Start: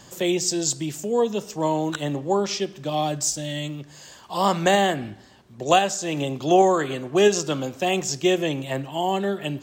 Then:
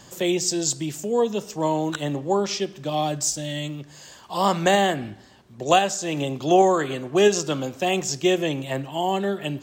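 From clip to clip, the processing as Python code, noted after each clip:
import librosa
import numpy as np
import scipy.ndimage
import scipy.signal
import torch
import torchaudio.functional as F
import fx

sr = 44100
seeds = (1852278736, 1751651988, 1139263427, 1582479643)

y = x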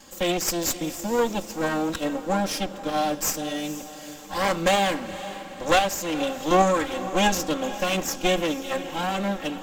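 y = fx.lower_of_two(x, sr, delay_ms=3.7)
y = fx.peak_eq(y, sr, hz=14000.0, db=2.0, octaves=0.28)
y = fx.echo_diffused(y, sr, ms=483, feedback_pct=52, wet_db=-13.5)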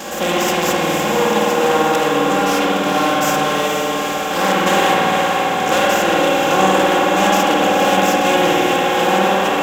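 y = fx.bin_compress(x, sr, power=0.4)
y = scipy.signal.sosfilt(scipy.signal.butter(2, 85.0, 'highpass', fs=sr, output='sos'), y)
y = fx.rev_spring(y, sr, rt60_s=2.9, pass_ms=(52,), chirp_ms=70, drr_db=-5.0)
y = F.gain(torch.from_numpy(y), -3.0).numpy()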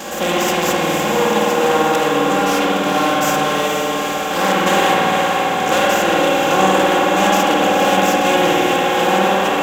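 y = fx.notch(x, sr, hz=5300.0, q=28.0)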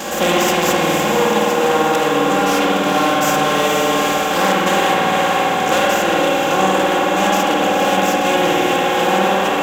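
y = fx.rider(x, sr, range_db=10, speed_s=0.5)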